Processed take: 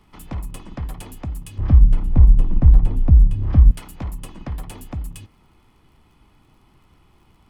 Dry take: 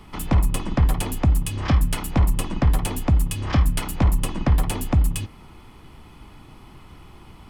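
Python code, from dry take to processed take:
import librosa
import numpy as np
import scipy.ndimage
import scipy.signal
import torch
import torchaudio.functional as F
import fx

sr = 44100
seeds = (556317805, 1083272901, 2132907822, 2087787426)

y = fx.dmg_crackle(x, sr, seeds[0], per_s=54.0, level_db=-42.0)
y = fx.tilt_eq(y, sr, slope=-4.5, at=(1.58, 3.71))
y = y * librosa.db_to_amplitude(-10.5)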